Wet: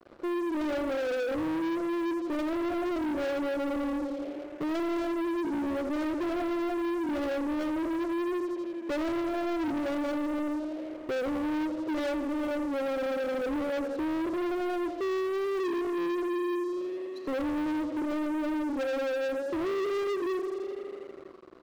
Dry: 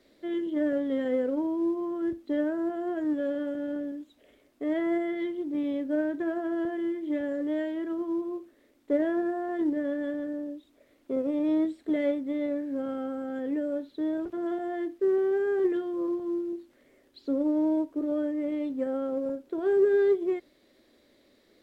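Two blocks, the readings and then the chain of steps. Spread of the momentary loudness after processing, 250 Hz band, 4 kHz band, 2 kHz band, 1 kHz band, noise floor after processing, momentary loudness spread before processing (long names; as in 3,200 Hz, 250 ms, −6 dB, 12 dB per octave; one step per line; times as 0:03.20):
4 LU, −1.5 dB, can't be measured, +3.5 dB, +6.0 dB, −41 dBFS, 8 LU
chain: adaptive Wiener filter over 25 samples
high-pass filter 280 Hz 12 dB per octave
comb filter 5.8 ms, depth 42%
in parallel at −1 dB: speech leveller
on the sum: pitch vibrato 0.5 Hz 38 cents
downward compressor 1.5 to 1, threshold −40 dBFS, peak gain reduction 8.5 dB
on a send: tape delay 83 ms, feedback 89%, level −11 dB, low-pass 2,900 Hz
on the sum: leveller curve on the samples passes 5
level −8.5 dB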